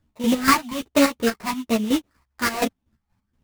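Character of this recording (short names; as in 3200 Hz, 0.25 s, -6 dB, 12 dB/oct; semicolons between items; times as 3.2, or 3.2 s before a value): chopped level 4.2 Hz, depth 65%, duty 40%; phasing stages 12, 1.2 Hz, lowest notch 440–2700 Hz; aliases and images of a low sample rate 3300 Hz, jitter 20%; a shimmering, thickened sound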